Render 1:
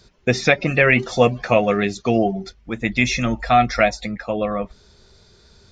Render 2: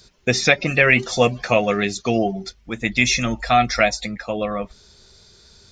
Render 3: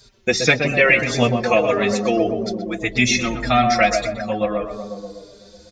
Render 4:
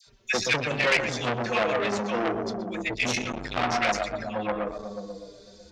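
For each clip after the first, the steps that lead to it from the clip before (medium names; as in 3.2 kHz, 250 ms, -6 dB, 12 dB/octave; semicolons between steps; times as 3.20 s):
treble shelf 3.2 kHz +10.5 dB; trim -2 dB
on a send: tape echo 123 ms, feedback 82%, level -3 dB, low-pass 1 kHz; on the sum: endless flanger 4.5 ms -1.7 Hz; trim +3 dB
phase dispersion lows, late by 70 ms, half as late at 1.2 kHz; transformer saturation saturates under 2.7 kHz; trim -4.5 dB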